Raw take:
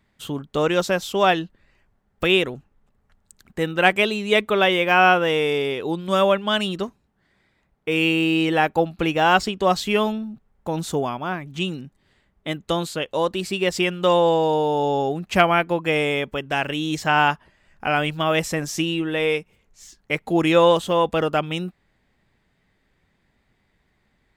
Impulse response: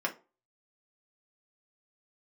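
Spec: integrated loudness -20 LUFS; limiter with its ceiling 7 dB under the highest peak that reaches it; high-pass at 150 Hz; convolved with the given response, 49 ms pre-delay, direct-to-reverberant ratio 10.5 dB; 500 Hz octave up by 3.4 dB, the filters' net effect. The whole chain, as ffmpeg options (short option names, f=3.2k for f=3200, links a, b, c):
-filter_complex "[0:a]highpass=150,equalizer=f=500:t=o:g=4,alimiter=limit=-6.5dB:level=0:latency=1,asplit=2[a][b];[1:a]atrim=start_sample=2205,adelay=49[c];[b][c]afir=irnorm=-1:irlink=0,volume=-17dB[d];[a][d]amix=inputs=2:normalize=0"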